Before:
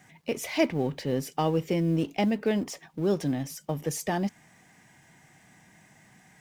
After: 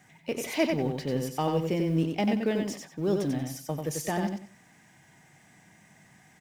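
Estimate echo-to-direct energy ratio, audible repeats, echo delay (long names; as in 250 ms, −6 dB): −4.5 dB, 3, 92 ms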